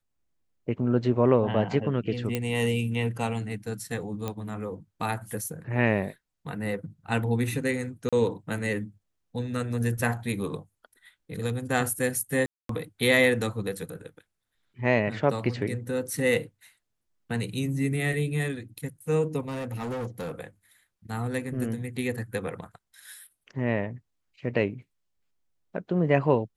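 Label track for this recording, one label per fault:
2.350000	2.350000	pop -13 dBFS
4.280000	4.280000	pop -17 dBFS
8.090000	8.130000	dropout 36 ms
12.460000	12.690000	dropout 233 ms
19.480000	20.320000	clipped -29.5 dBFS

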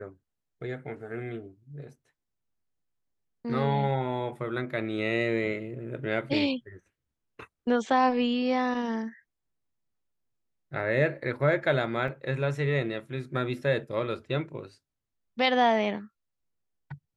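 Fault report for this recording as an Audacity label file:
12.080000	12.080000	dropout 2.8 ms

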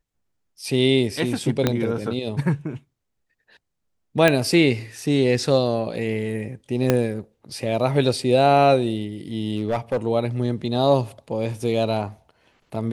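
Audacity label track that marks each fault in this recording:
1.670000	1.670000	pop -5 dBFS
4.280000	4.280000	pop -4 dBFS
6.900000	6.900000	pop -4 dBFS
9.560000	9.970000	clipped -17 dBFS

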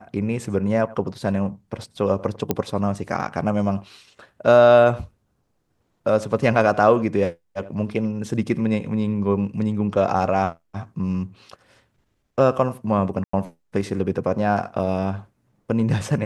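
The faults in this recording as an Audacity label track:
2.510000	2.510000	pop -7 dBFS
13.240000	13.330000	dropout 94 ms

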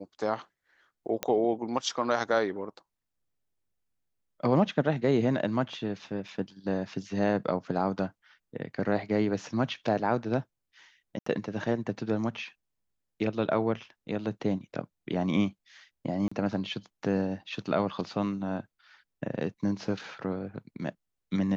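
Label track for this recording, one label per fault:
1.230000	1.230000	pop -12 dBFS
6.280000	6.280000	dropout 4.1 ms
11.190000	11.260000	dropout 74 ms
16.280000	16.320000	dropout 35 ms

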